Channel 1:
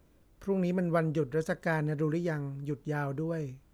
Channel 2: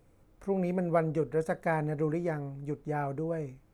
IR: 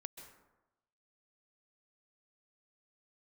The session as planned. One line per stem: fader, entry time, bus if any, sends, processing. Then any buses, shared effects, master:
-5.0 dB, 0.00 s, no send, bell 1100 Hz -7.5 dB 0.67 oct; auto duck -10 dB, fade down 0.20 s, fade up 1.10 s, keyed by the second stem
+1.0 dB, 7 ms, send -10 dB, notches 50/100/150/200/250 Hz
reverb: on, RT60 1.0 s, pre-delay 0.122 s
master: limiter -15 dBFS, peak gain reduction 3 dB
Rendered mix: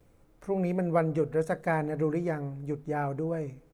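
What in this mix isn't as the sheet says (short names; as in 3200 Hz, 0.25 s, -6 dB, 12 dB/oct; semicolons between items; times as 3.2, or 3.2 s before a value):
stem 2: send -10 dB -> -17.5 dB; master: missing limiter -15 dBFS, peak gain reduction 3 dB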